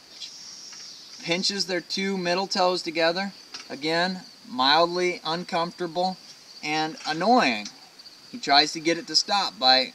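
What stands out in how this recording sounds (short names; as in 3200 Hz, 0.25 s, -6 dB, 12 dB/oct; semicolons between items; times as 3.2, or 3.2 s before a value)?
noise floor -50 dBFS; spectral tilt -3.0 dB/oct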